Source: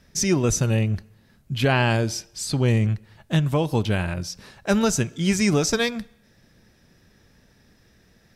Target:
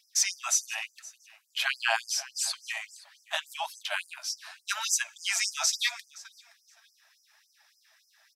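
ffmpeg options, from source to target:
ffmpeg -i in.wav -af "flanger=delay=1.8:depth=7.3:regen=49:speed=0.8:shape=sinusoidal,aecho=1:1:520|1040:0.0944|0.016,afftfilt=real='re*gte(b*sr/1024,580*pow(4900/580,0.5+0.5*sin(2*PI*3.5*pts/sr)))':imag='im*gte(b*sr/1024,580*pow(4900/580,0.5+0.5*sin(2*PI*3.5*pts/sr)))':win_size=1024:overlap=0.75,volume=4.5dB" out.wav

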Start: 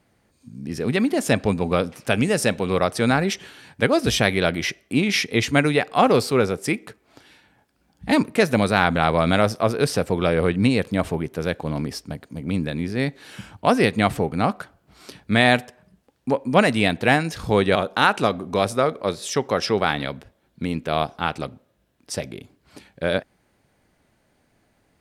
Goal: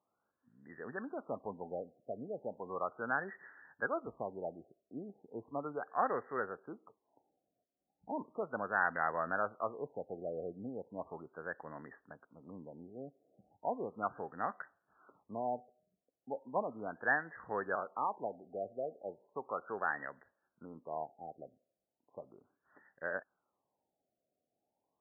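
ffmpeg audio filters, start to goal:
ffmpeg -i in.wav -af "aderivative,afftfilt=real='re*lt(b*sr/1024,750*pow(2000/750,0.5+0.5*sin(2*PI*0.36*pts/sr)))':imag='im*lt(b*sr/1024,750*pow(2000/750,0.5+0.5*sin(2*PI*0.36*pts/sr)))':win_size=1024:overlap=0.75,volume=4dB" out.wav

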